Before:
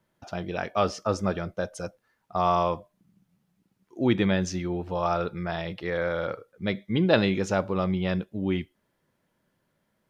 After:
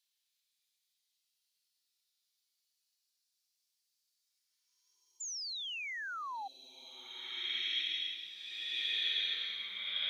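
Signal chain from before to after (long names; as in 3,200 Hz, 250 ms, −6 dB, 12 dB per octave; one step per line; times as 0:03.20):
auto-filter high-pass sine 0.32 Hz 950–4,700 Hz
extreme stretch with random phases 13×, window 0.10 s, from 0:03.52
sound drawn into the spectrogram fall, 0:05.20–0:06.48, 760–7,300 Hz −41 dBFS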